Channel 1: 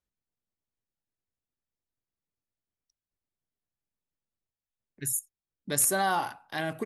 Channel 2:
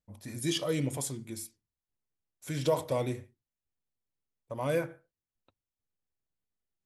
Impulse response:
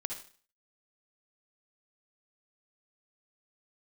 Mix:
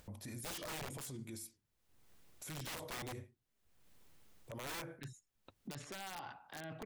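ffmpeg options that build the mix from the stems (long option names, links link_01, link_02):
-filter_complex "[0:a]lowpass=frequency=4000:width=0.5412,lowpass=frequency=4000:width=1.3066,acrossover=split=150|3000[link_01][link_02][link_03];[link_02]acompressor=threshold=-36dB:ratio=2[link_04];[link_01][link_04][link_03]amix=inputs=3:normalize=0,volume=-4dB[link_05];[1:a]acontrast=48,volume=-8.5dB[link_06];[link_05][link_06]amix=inputs=2:normalize=0,acompressor=mode=upward:threshold=-42dB:ratio=2.5,aeval=exprs='(mod(29.9*val(0)+1,2)-1)/29.9':channel_layout=same,alimiter=level_in=15dB:limit=-24dB:level=0:latency=1:release=23,volume=-15dB"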